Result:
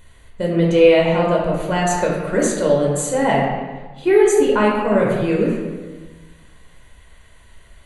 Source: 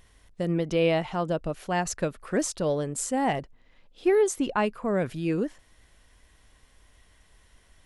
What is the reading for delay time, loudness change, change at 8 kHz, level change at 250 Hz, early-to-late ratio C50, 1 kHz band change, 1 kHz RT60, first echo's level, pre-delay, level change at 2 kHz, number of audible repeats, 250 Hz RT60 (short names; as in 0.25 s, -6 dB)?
none, +10.0 dB, +7.0 dB, +9.5 dB, 1.0 dB, +9.5 dB, 1.3 s, none, 10 ms, +10.0 dB, none, 1.5 s